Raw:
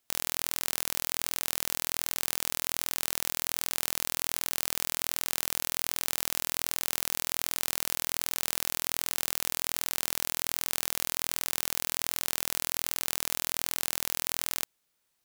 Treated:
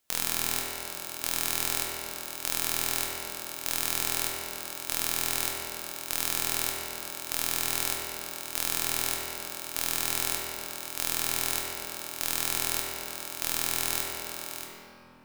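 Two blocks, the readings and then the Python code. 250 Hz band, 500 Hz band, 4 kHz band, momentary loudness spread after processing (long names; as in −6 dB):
+3.0 dB, +3.0 dB, +1.0 dB, 8 LU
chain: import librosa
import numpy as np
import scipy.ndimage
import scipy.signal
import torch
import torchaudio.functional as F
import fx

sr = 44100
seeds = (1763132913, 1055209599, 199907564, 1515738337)

y = fx.chopper(x, sr, hz=0.82, depth_pct=65, duty_pct=50)
y = fx.room_shoebox(y, sr, seeds[0], volume_m3=130.0, walls='hard', distance_m=0.52)
y = y * librosa.db_to_amplitude(1.0)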